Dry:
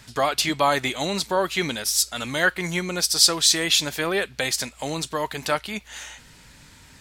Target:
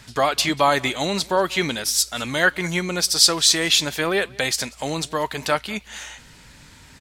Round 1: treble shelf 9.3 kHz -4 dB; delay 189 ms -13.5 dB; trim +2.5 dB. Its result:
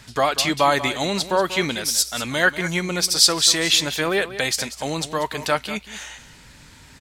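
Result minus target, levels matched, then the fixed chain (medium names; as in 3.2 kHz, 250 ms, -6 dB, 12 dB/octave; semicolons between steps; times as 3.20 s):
echo-to-direct +11.5 dB
treble shelf 9.3 kHz -4 dB; delay 189 ms -25 dB; trim +2.5 dB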